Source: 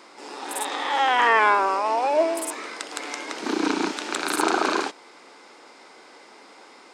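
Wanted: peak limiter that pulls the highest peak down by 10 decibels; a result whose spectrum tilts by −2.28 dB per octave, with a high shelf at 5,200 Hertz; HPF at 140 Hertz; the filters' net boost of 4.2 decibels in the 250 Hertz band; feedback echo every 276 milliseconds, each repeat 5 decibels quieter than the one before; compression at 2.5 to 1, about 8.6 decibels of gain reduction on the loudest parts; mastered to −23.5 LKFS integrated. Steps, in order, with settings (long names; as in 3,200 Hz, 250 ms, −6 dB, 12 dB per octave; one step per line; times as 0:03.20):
high-pass filter 140 Hz
parametric band 250 Hz +6 dB
high-shelf EQ 5,200 Hz −5.5 dB
downward compressor 2.5 to 1, threshold −28 dBFS
brickwall limiter −23 dBFS
repeating echo 276 ms, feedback 56%, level −5 dB
level +8.5 dB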